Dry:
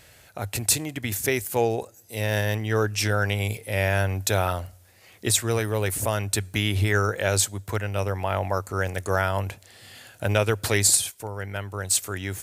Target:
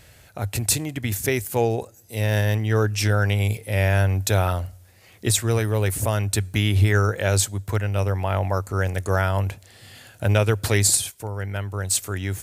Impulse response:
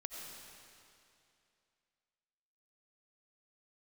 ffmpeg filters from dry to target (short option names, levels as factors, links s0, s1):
-af "lowshelf=f=200:g=7.5"